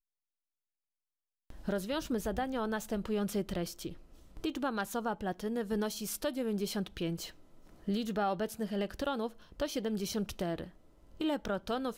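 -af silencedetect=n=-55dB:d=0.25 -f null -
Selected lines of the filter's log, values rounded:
silence_start: 0.00
silence_end: 1.50 | silence_duration: 1.50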